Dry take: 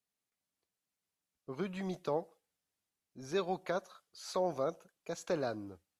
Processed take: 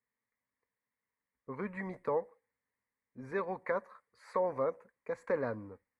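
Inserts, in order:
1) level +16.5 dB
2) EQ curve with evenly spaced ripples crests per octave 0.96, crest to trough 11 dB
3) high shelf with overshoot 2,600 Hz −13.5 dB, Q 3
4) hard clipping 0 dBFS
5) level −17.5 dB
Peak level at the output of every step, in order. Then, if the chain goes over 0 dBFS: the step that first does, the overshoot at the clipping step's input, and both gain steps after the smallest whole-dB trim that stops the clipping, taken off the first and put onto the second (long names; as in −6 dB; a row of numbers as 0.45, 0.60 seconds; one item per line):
−5.5, −3.5, −2.0, −2.0, −19.5 dBFS
no step passes full scale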